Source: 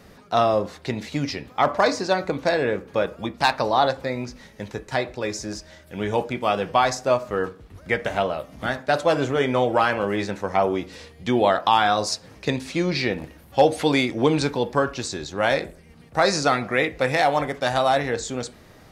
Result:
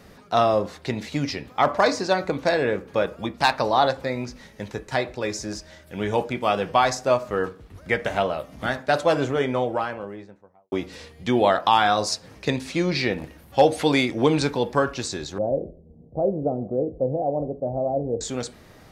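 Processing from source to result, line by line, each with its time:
8.97–10.72 studio fade out
15.38–18.21 steep low-pass 640 Hz

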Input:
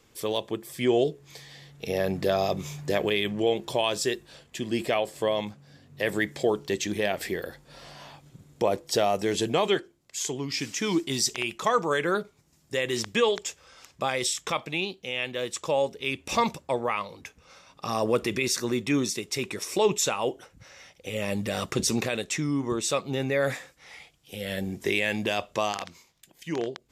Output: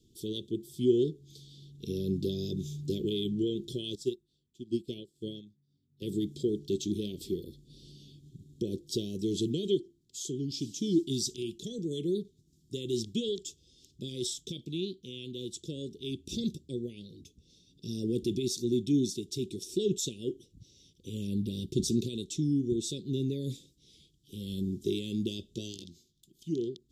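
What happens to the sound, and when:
3.95–6.02 upward expander 2.5:1, over -36 dBFS
21.27–21.73 bell 6900 Hz -10.5 dB 0.67 oct
25.44–25.86 doubler 17 ms -8.5 dB
whole clip: Chebyshev band-stop 380–3400 Hz, order 4; high shelf 3700 Hz -10.5 dB

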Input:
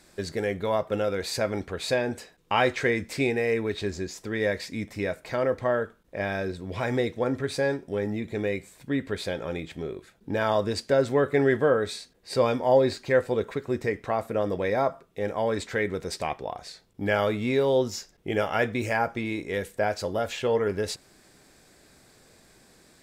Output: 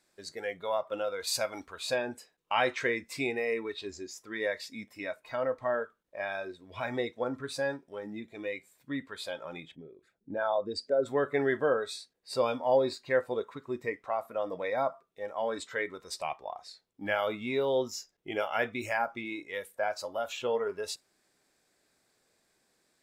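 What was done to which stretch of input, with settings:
1.27–1.8 high shelf 4300 Hz +8 dB
9.71–11.06 formant sharpening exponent 1.5
whole clip: spectral noise reduction 11 dB; low shelf 200 Hz -12 dB; gain -3.5 dB

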